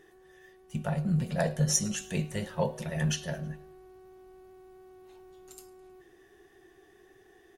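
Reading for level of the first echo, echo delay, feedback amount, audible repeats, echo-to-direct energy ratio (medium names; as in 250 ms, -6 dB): -23.0 dB, 106 ms, 50%, 2, -22.0 dB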